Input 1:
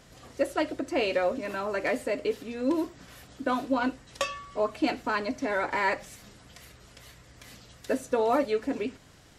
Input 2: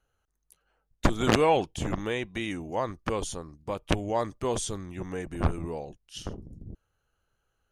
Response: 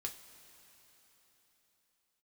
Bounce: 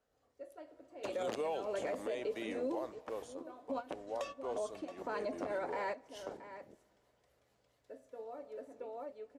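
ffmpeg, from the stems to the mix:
-filter_complex "[0:a]volume=-14dB,asplit=3[a][b][c];[b]volume=-18.5dB[d];[c]volume=-17dB[e];[1:a]highpass=270,volume=-6dB,afade=t=out:st=2.8:d=0.26:silence=0.354813,afade=t=in:st=4.42:d=0.79:silence=0.421697,asplit=3[f][g][h];[g]volume=-11.5dB[i];[h]apad=whole_len=413874[j];[a][j]sidechaingate=range=-33dB:threshold=-58dB:ratio=16:detection=peak[k];[2:a]atrim=start_sample=2205[l];[d][i]amix=inputs=2:normalize=0[m];[m][l]afir=irnorm=-1:irlink=0[n];[e]aecho=0:1:674:1[o];[k][f][n][o]amix=inputs=4:normalize=0,equalizer=f=580:t=o:w=1.6:g=12.5,acrossover=split=150|3000[p][q][r];[q]acompressor=threshold=-32dB:ratio=6[s];[p][s][r]amix=inputs=3:normalize=0,alimiter=level_in=5dB:limit=-24dB:level=0:latency=1:release=49,volume=-5dB"

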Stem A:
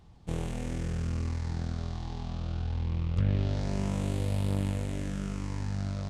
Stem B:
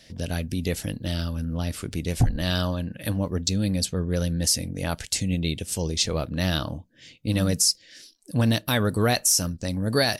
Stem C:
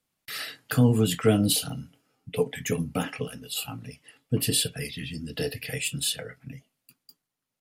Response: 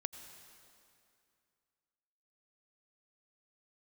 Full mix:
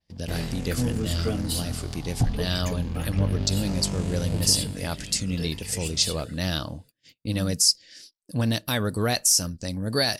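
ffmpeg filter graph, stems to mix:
-filter_complex "[0:a]volume=-1.5dB,afade=t=out:st=4.4:d=0.35:silence=0.354813,asplit=2[a][b];[b]volume=-9dB[c];[1:a]volume=-3dB[d];[2:a]volume=-11.5dB,asplit=2[e][f];[f]volume=-4.5dB[g];[3:a]atrim=start_sample=2205[h];[c][g]amix=inputs=2:normalize=0[i];[i][h]afir=irnorm=-1:irlink=0[j];[a][d][e][j]amix=inputs=4:normalize=0,adynamicequalizer=threshold=0.00794:dfrequency=7600:dqfactor=0.89:tfrequency=7600:tqfactor=0.89:attack=5:release=100:ratio=0.375:range=2:mode=boostabove:tftype=bell,agate=range=-26dB:threshold=-48dB:ratio=16:detection=peak,equalizer=f=4.8k:w=5.4:g=5.5"

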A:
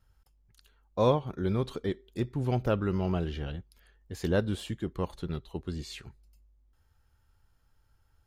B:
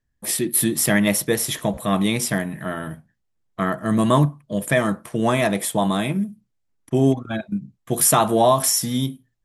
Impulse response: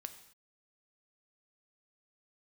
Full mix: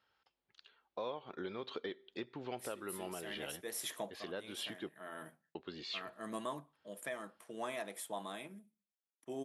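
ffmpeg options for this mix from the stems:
-filter_complex "[0:a]lowpass=f=3.9k:w=0.5412,lowpass=f=3.9k:w=1.3066,highshelf=f=2.7k:g=9.5,acompressor=threshold=-31dB:ratio=6,volume=-1.5dB,asplit=3[a][b][c];[a]atrim=end=4.89,asetpts=PTS-STARTPTS,afade=t=out:st=4.886:d=0.004:c=hsin[d];[b]atrim=start=4.89:end=5.55,asetpts=PTS-STARTPTS,volume=0[e];[c]atrim=start=5.55,asetpts=PTS-STARTPTS,afade=t=in:d=0.004:c=hsin[f];[d][e][f]concat=n=3:v=0:a=1,asplit=3[g][h][i];[h]volume=-16.5dB[j];[1:a]adelay=2350,volume=-12dB,afade=t=out:st=6:d=0.46:silence=0.398107,asplit=2[k][l];[l]volume=-21dB[m];[i]apad=whole_len=520215[n];[k][n]sidechaincompress=threshold=-52dB:ratio=5:attack=11:release=283[o];[2:a]atrim=start_sample=2205[p];[j][m]amix=inputs=2:normalize=0[q];[q][p]afir=irnorm=-1:irlink=0[r];[g][o][r]amix=inputs=3:normalize=0,highpass=380,alimiter=level_in=6dB:limit=-24dB:level=0:latency=1:release=303,volume=-6dB"

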